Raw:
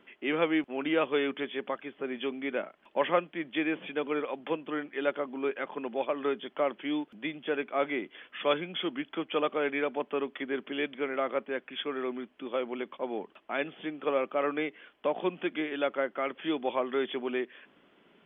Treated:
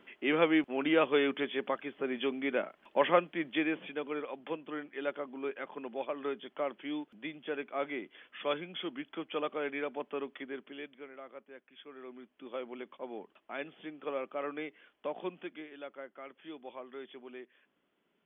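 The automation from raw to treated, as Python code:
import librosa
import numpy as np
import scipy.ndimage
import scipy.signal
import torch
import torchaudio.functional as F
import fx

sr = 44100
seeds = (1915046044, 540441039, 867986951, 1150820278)

y = fx.gain(x, sr, db=fx.line((3.46, 0.5), (4.04, -6.0), (10.34, -6.0), (11.2, -18.0), (11.78, -18.0), (12.49, -8.0), (15.29, -8.0), (15.73, -15.5)))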